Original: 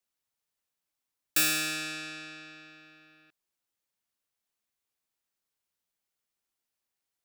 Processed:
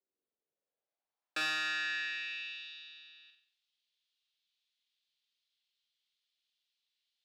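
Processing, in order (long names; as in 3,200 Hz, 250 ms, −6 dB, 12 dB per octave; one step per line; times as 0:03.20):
graphic EQ with 10 bands 1,000 Hz −5 dB, 4,000 Hz +6 dB, 16,000 Hz −11 dB
band-pass filter sweep 390 Hz → 3,400 Hz, 0:00.36–0:02.71
flutter between parallel walls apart 7.9 metres, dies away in 0.53 s
level +7 dB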